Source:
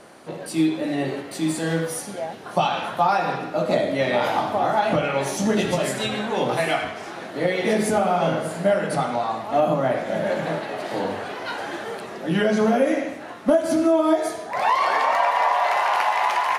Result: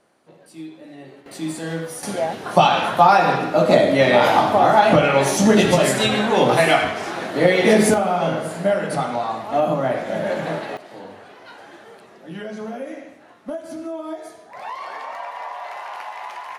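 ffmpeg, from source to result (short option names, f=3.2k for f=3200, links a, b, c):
-af "asetnsamples=n=441:p=0,asendcmd='1.26 volume volume -3.5dB;2.03 volume volume 7dB;7.94 volume volume 0.5dB;10.77 volume volume -12dB',volume=-15.5dB"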